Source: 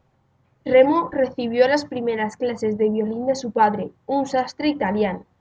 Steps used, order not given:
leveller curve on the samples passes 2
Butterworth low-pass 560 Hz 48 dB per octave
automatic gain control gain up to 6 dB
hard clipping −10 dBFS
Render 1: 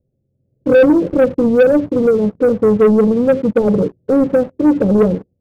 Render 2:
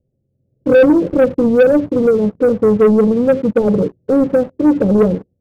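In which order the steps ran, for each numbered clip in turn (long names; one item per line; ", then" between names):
hard clipping, then Butterworth low-pass, then automatic gain control, then leveller curve on the samples
hard clipping, then automatic gain control, then Butterworth low-pass, then leveller curve on the samples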